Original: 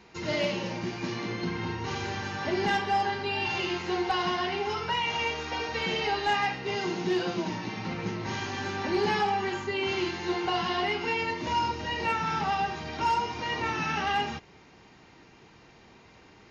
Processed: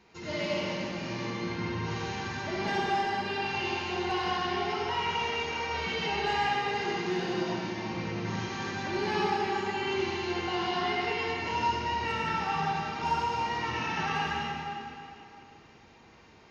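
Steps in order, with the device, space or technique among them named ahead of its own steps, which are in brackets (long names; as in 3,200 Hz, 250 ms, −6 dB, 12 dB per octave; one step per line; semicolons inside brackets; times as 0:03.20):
stairwell (convolution reverb RT60 2.8 s, pre-delay 56 ms, DRR −4 dB)
level −6.5 dB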